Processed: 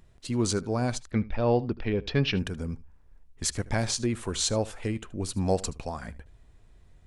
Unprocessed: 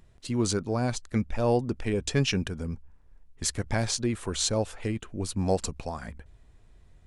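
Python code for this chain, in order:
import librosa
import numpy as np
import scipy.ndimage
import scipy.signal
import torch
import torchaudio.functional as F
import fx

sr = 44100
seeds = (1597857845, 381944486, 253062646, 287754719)

p1 = fx.steep_lowpass(x, sr, hz=4600.0, slope=36, at=(1.11, 2.37))
y = p1 + fx.echo_single(p1, sr, ms=76, db=-20.0, dry=0)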